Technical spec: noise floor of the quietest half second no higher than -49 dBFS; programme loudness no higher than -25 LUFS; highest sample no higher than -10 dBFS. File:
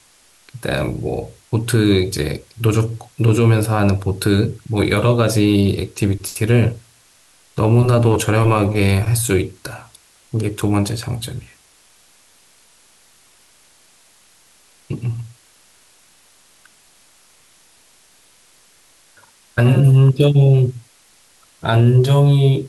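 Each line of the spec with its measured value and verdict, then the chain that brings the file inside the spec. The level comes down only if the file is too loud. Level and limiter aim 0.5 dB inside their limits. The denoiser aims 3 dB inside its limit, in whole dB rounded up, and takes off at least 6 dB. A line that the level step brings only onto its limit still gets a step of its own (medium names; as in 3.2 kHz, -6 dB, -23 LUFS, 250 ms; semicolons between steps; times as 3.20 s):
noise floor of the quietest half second -52 dBFS: pass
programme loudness -16.5 LUFS: fail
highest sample -4.0 dBFS: fail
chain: trim -9 dB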